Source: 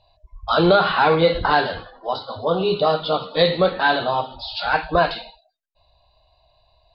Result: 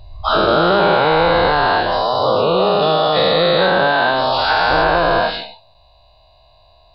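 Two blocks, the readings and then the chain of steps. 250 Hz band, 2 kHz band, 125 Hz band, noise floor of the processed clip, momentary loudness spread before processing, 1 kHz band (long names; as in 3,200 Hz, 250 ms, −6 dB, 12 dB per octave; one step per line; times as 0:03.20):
+3.0 dB, +6.0 dB, +3.0 dB, −51 dBFS, 12 LU, +6.0 dB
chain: every bin's largest magnitude spread in time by 480 ms
downward compressor 3 to 1, threshold −16 dBFS, peak gain reduction 9.5 dB
level +3 dB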